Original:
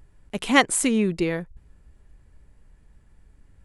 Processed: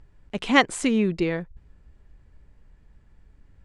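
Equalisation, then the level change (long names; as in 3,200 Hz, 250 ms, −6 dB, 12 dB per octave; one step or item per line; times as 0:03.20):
high-frequency loss of the air 130 metres
high-shelf EQ 5,800 Hz +8 dB
0.0 dB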